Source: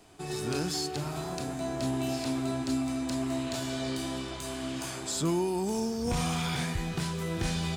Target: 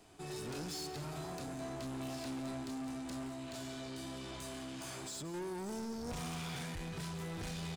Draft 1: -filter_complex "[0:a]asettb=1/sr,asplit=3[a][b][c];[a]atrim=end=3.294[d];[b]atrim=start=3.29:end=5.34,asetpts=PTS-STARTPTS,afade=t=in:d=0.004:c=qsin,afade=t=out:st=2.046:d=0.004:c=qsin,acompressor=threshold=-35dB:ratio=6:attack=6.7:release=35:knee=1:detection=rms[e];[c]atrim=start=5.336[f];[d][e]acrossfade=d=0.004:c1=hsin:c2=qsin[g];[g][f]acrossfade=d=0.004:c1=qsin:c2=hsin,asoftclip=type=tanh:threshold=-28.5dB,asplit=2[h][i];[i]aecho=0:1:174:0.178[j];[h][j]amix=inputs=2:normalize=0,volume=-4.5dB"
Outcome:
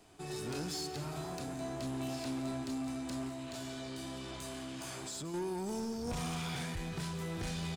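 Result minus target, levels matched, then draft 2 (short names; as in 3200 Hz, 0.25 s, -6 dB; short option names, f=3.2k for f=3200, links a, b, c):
soft clip: distortion -5 dB
-filter_complex "[0:a]asettb=1/sr,asplit=3[a][b][c];[a]atrim=end=3.294[d];[b]atrim=start=3.29:end=5.34,asetpts=PTS-STARTPTS,afade=t=in:d=0.004:c=qsin,afade=t=out:st=2.046:d=0.004:c=qsin,acompressor=threshold=-35dB:ratio=6:attack=6.7:release=35:knee=1:detection=rms[e];[c]atrim=start=5.336[f];[d][e]acrossfade=d=0.004:c1=hsin:c2=qsin[g];[g][f]acrossfade=d=0.004:c1=qsin:c2=hsin,asoftclip=type=tanh:threshold=-34.5dB,asplit=2[h][i];[i]aecho=0:1:174:0.178[j];[h][j]amix=inputs=2:normalize=0,volume=-4.5dB"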